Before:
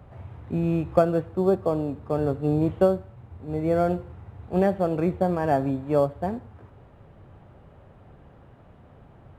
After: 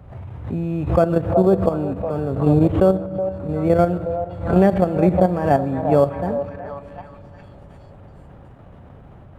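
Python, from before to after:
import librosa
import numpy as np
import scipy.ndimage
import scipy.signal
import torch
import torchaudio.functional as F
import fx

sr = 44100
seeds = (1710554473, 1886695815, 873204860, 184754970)

y = fx.low_shelf(x, sr, hz=230.0, db=4.5)
y = fx.echo_stepped(y, sr, ms=370, hz=680.0, octaves=0.7, feedback_pct=70, wet_db=-5.0)
y = fx.level_steps(y, sr, step_db=10)
y = fx.rev_fdn(y, sr, rt60_s=3.9, lf_ratio=1.0, hf_ratio=0.3, size_ms=32.0, drr_db=16.5)
y = fx.pre_swell(y, sr, db_per_s=100.0)
y = F.gain(torch.from_numpy(y), 7.0).numpy()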